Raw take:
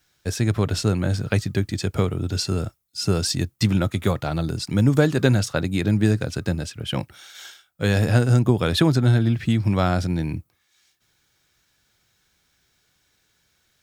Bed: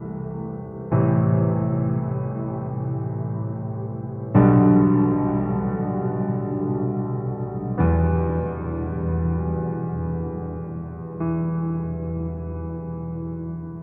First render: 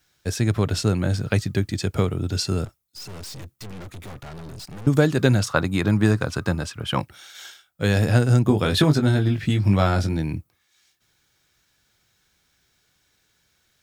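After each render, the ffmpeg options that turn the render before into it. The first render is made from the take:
ffmpeg -i in.wav -filter_complex "[0:a]asettb=1/sr,asplit=3[link_01][link_02][link_03];[link_01]atrim=end=2.654[link_04];[link_02]atrim=start=2.65:end=4.87,asetpts=PTS-STARTPTS,afade=type=in:duration=0.004:curve=qsin,afade=type=out:start_time=2.216:duration=0.004:curve=qsin,aeval=exprs='(tanh(63.1*val(0)+0.45)-tanh(0.45))/63.1':channel_layout=same[link_05];[link_03]atrim=start=4.866[link_06];[link_04][link_05]acrossfade=duration=0.004:curve1=hsin:curve2=qsin[link_07];[link_07][link_06]acrossfade=duration=0.004:curve1=qsin:curve2=hsin,asettb=1/sr,asplit=3[link_08][link_09][link_10];[link_08]atrim=end=5.424[link_11];[link_09]atrim=start=5.42:end=7.01,asetpts=PTS-STARTPTS,afade=type=in:duration=0.004:curve=qsin,afade=type=out:start_time=1.586:duration=0.004:curve=qsin,equalizer=frequency=1100:width=1.6:gain=11.5[link_12];[link_10]atrim=start=7.006[link_13];[link_11][link_12]acrossfade=duration=0.004:curve1=hsin:curve2=qsin[link_14];[link_14][link_13]acrossfade=duration=0.004:curve1=qsin:curve2=hsin,asettb=1/sr,asplit=3[link_15][link_16][link_17];[link_15]atrim=end=8.464[link_18];[link_16]atrim=start=8.46:end=10.17,asetpts=PTS-STARTPTS,afade=type=in:duration=0.004:curve=qsin,afade=type=out:start_time=1.706:duration=0.004:curve=qsin,asplit=2[link_19][link_20];[link_20]adelay=20,volume=-5.5dB[link_21];[link_19][link_21]amix=inputs=2:normalize=0,atrim=end_sample=75411[link_22];[link_17]atrim=start=10.166[link_23];[link_18][link_22]acrossfade=duration=0.004:curve1=hsin:curve2=qsin[link_24];[link_24][link_23]acrossfade=duration=0.004:curve1=qsin:curve2=hsin" out.wav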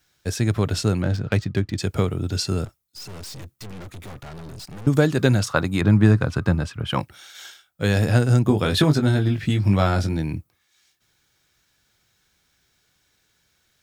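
ffmpeg -i in.wav -filter_complex "[0:a]asettb=1/sr,asplit=3[link_01][link_02][link_03];[link_01]atrim=end=1.024[link_04];[link_02]atrim=start=1.02:end=1.78,asetpts=PTS-STARTPTS,afade=type=in:duration=0.004:curve=qsin,afade=type=out:start_time=0.756:duration=0.004:curve=qsin,adynamicsmooth=sensitivity=5.5:basefreq=2800[link_05];[link_03]atrim=start=1.776[link_06];[link_04][link_05]acrossfade=duration=0.004:curve1=hsin:curve2=qsin[link_07];[link_07][link_06]acrossfade=duration=0.004:curve1=qsin:curve2=hsin,asettb=1/sr,asplit=3[link_08][link_09][link_10];[link_08]atrim=end=5.814[link_11];[link_09]atrim=start=5.81:end=6.9,asetpts=PTS-STARTPTS,afade=type=in:duration=0.004:curve=qsin,afade=type=out:start_time=1.086:duration=0.004:curve=qsin,bass=frequency=250:gain=5,treble=frequency=4000:gain=-7[link_12];[link_10]atrim=start=6.896[link_13];[link_11][link_12]acrossfade=duration=0.004:curve1=hsin:curve2=qsin[link_14];[link_14][link_13]acrossfade=duration=0.004:curve1=qsin:curve2=hsin" out.wav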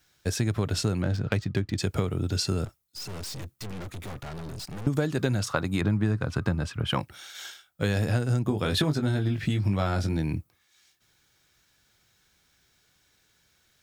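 ffmpeg -i in.wav -af "acompressor=threshold=-23dB:ratio=4" out.wav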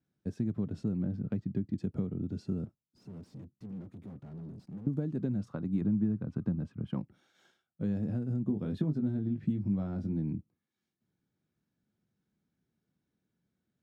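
ffmpeg -i in.wav -af "bandpass=frequency=210:width_type=q:width=2.3:csg=0,crystalizer=i=1.5:c=0" out.wav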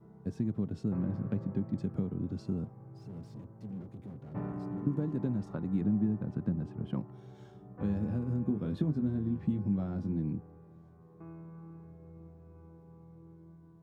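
ffmpeg -i in.wav -i bed.wav -filter_complex "[1:a]volume=-24dB[link_01];[0:a][link_01]amix=inputs=2:normalize=0" out.wav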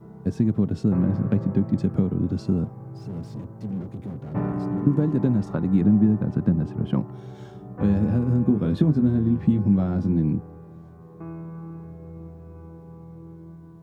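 ffmpeg -i in.wav -af "volume=11.5dB" out.wav

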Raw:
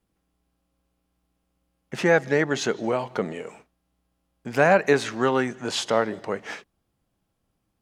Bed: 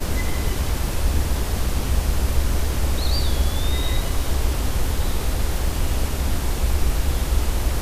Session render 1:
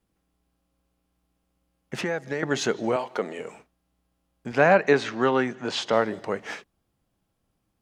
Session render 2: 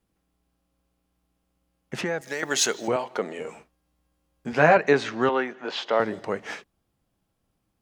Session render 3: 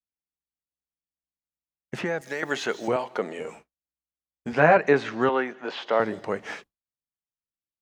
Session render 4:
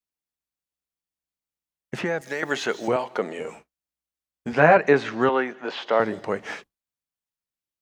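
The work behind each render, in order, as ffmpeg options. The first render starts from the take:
ffmpeg -i in.wav -filter_complex "[0:a]asettb=1/sr,asplit=3[link_01][link_02][link_03];[link_01]atrim=end=2.014[link_04];[link_02]atrim=start=2.01:end=2.43,asetpts=PTS-STARTPTS,afade=type=in:duration=0.004:curve=qsin,afade=type=out:start_time=0.416:duration=0.004:curve=qsin,acrossover=split=790|4900[link_05][link_06][link_07];[link_05]acompressor=threshold=-29dB:ratio=4[link_08];[link_06]acompressor=threshold=-34dB:ratio=4[link_09];[link_07]acompressor=threshold=-57dB:ratio=4[link_10];[link_08][link_09][link_10]amix=inputs=3:normalize=0[link_11];[link_03]atrim=start=2.426[link_12];[link_04][link_11]acrossfade=duration=0.004:curve1=hsin:curve2=qsin[link_13];[link_13][link_12]acrossfade=duration=0.004:curve1=qsin:curve2=hsin,asettb=1/sr,asplit=3[link_14][link_15][link_16];[link_14]atrim=end=2.964[link_17];[link_15]atrim=start=2.96:end=3.39,asetpts=PTS-STARTPTS,afade=type=in:duration=0.004:curve=qsin,afade=type=out:start_time=0.426:duration=0.004:curve=qsin,highpass=310[link_18];[link_16]atrim=start=3.386[link_19];[link_17][link_18]acrossfade=duration=0.004:curve1=hsin:curve2=qsin[link_20];[link_20][link_19]acrossfade=duration=0.004:curve1=qsin:curve2=hsin,asettb=1/sr,asplit=3[link_21][link_22][link_23];[link_21]atrim=end=4.524[link_24];[link_22]atrim=start=4.52:end=5.93,asetpts=PTS-STARTPTS,afade=type=in:duration=0.004:curve=qsin,afade=type=out:start_time=1.406:duration=0.004:curve=qsin,highpass=110,lowpass=5000[link_25];[link_23]atrim=start=5.926[link_26];[link_24][link_25]acrossfade=duration=0.004:curve1=hsin:curve2=qsin[link_27];[link_27][link_26]acrossfade=duration=0.004:curve1=qsin:curve2=hsin" out.wav
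ffmpeg -i in.wav -filter_complex "[0:a]asettb=1/sr,asplit=3[link_01][link_02][link_03];[link_01]atrim=end=2.214[link_04];[link_02]atrim=start=2.21:end=2.88,asetpts=PTS-STARTPTS,afade=type=in:duration=0.004:curve=qsin,afade=type=out:start_time=0.666:duration=0.004:curve=qsin,aemphasis=mode=production:type=riaa[link_05];[link_03]atrim=start=2.876[link_06];[link_04][link_05]acrossfade=duration=0.004:curve1=hsin:curve2=qsin[link_07];[link_07][link_06]acrossfade=duration=0.004:curve1=qsin:curve2=hsin,asettb=1/sr,asplit=3[link_08][link_09][link_10];[link_08]atrim=end=3.404[link_11];[link_09]atrim=start=3.4:end=4.77,asetpts=PTS-STARTPTS,afade=type=in:duration=0.004:curve=qsin,afade=type=out:start_time=1.366:duration=0.004:curve=qsin,asplit=2[link_12][link_13];[link_13]adelay=13,volume=-4dB[link_14];[link_12][link_14]amix=inputs=2:normalize=0,atrim=end_sample=60417[link_15];[link_10]atrim=start=4.766[link_16];[link_11][link_15]acrossfade=duration=0.004:curve1=hsin:curve2=qsin[link_17];[link_17][link_16]acrossfade=duration=0.004:curve1=qsin:curve2=hsin,asettb=1/sr,asplit=3[link_18][link_19][link_20];[link_18]atrim=end=5.294[link_21];[link_19]atrim=start=5.29:end=6,asetpts=PTS-STARTPTS,afade=type=in:duration=0.004:curve=qsin,afade=type=out:start_time=0.706:duration=0.004:curve=qsin,highpass=350,lowpass=3900[link_22];[link_20]atrim=start=5.996[link_23];[link_21][link_22]acrossfade=duration=0.004:curve1=hsin:curve2=qsin[link_24];[link_24][link_23]acrossfade=duration=0.004:curve1=qsin:curve2=hsin" out.wav
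ffmpeg -i in.wav -filter_complex "[0:a]agate=range=-33dB:threshold=-40dB:ratio=3:detection=peak,acrossover=split=3000[link_01][link_02];[link_02]acompressor=threshold=-44dB:ratio=4:attack=1:release=60[link_03];[link_01][link_03]amix=inputs=2:normalize=0" out.wav
ffmpeg -i in.wav -af "volume=2dB" out.wav

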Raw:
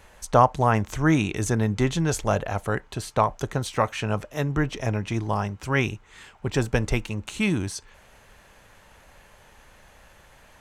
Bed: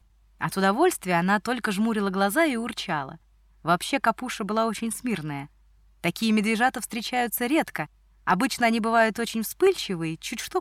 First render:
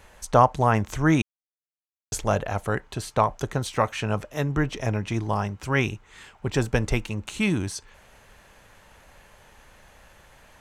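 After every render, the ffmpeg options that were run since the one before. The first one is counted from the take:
ffmpeg -i in.wav -filter_complex "[0:a]asplit=3[link_01][link_02][link_03];[link_01]atrim=end=1.22,asetpts=PTS-STARTPTS,afade=type=out:start_time=1.216:duration=0.004:curve=hsin[link_04];[link_02]atrim=start=1.22:end=2.12,asetpts=PTS-STARTPTS,volume=0[link_05];[link_03]atrim=start=2.12,asetpts=PTS-STARTPTS,afade=type=in:duration=0.004:curve=hsin[link_06];[link_04][link_05][link_06]concat=n=3:v=0:a=1" out.wav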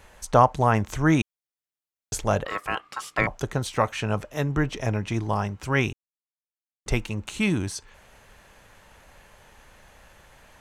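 ffmpeg -i in.wav -filter_complex "[0:a]asettb=1/sr,asplit=3[link_01][link_02][link_03];[link_01]atrim=end=2.454[link_04];[link_02]atrim=start=2.45:end=3.27,asetpts=PTS-STARTPTS,afade=type=in:duration=0.004:curve=qsin,afade=type=out:start_time=0.816:duration=0.004:curve=qsin,aeval=exprs='val(0)*sin(2*PI*1200*n/s)':channel_layout=same[link_05];[link_03]atrim=start=3.266[link_06];[link_04][link_05]acrossfade=duration=0.004:curve1=hsin:curve2=qsin[link_07];[link_07][link_06]acrossfade=duration=0.004:curve1=qsin:curve2=hsin,asplit=3[link_08][link_09][link_10];[link_08]atrim=end=5.93,asetpts=PTS-STARTPTS,afade=type=out:start_time=5.926:duration=0.004:curve=hsin[link_11];[link_09]atrim=start=5.93:end=6.86,asetpts=PTS-STARTPTS,volume=0[link_12];[link_10]atrim=start=6.86,asetpts=PTS-STARTPTS,afade=type=in:duration=0.004:curve=hsin[link_13];[link_11][link_12][link_13]concat=n=3:v=0:a=1" out.wav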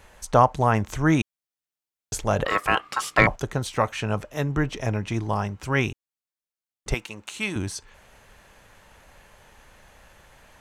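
ffmpeg -i in.wav -filter_complex "[0:a]asettb=1/sr,asplit=3[link_01][link_02][link_03];[link_01]atrim=end=2.394[link_04];[link_02]atrim=start=2.39:end=3.36,asetpts=PTS-STARTPTS,afade=type=in:duration=0.004:curve=qsin,afade=type=out:start_time=0.966:duration=0.004:curve=qsin,acontrast=84[link_05];[link_03]atrim=start=3.356[link_06];[link_04][link_05]acrossfade=duration=0.004:curve1=hsin:curve2=qsin[link_07];[link_07][link_06]acrossfade=duration=0.004:curve1=qsin:curve2=hsin,asettb=1/sr,asplit=3[link_08][link_09][link_10];[link_08]atrim=end=6.944[link_11];[link_09]atrim=start=6.94:end=7.56,asetpts=PTS-STARTPTS,afade=type=in:duration=0.004:curve=qsin,afade=type=out:start_time=0.616:duration=0.004:curve=qsin,highpass=frequency=640:poles=1[link_12];[link_10]atrim=start=7.556[link_13];[link_11][link_12]acrossfade=duration=0.004:curve1=hsin:curve2=qsin[link_14];[link_14][link_13]acrossfade=duration=0.004:curve1=qsin:curve2=hsin" out.wav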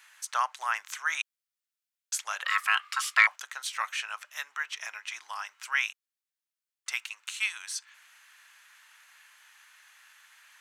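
ffmpeg -i in.wav -af "highpass=frequency=1300:width=0.5412,highpass=frequency=1300:width=1.3066" out.wav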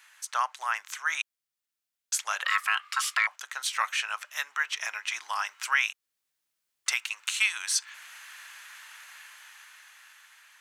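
ffmpeg -i in.wav -af "dynaudnorm=framelen=760:gausssize=5:maxgain=11.5dB,alimiter=limit=-12.5dB:level=0:latency=1:release=440" out.wav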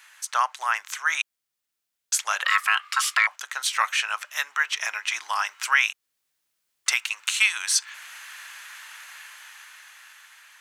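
ffmpeg -i in.wav -af "volume=5dB" out.wav

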